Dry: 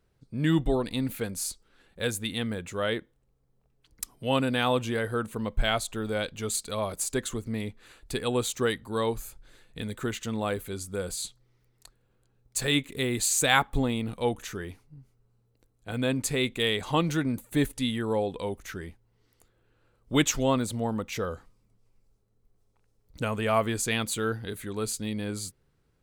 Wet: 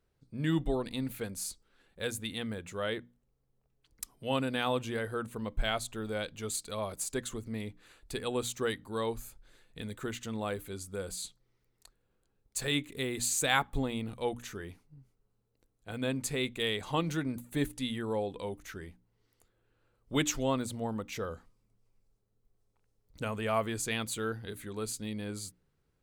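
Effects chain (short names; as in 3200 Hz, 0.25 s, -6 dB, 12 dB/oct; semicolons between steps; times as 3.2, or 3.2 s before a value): notches 60/120/180/240/300 Hz; gain -5.5 dB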